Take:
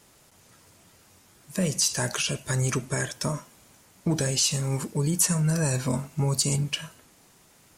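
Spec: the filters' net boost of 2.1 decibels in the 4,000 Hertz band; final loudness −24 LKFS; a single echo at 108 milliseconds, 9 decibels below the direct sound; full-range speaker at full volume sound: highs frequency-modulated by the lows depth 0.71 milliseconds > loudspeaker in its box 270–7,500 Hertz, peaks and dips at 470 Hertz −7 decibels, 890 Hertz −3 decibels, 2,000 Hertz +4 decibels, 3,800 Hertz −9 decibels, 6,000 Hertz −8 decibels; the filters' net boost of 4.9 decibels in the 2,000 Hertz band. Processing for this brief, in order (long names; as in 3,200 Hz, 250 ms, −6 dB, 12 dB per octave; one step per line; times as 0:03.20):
parametric band 2,000 Hz +3.5 dB
parametric band 4,000 Hz +7 dB
single-tap delay 108 ms −9 dB
highs frequency-modulated by the lows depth 0.71 ms
loudspeaker in its box 270–7,500 Hz, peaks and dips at 470 Hz −7 dB, 890 Hz −3 dB, 2,000 Hz +4 dB, 3,800 Hz −9 dB, 6,000 Hz −8 dB
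level +4.5 dB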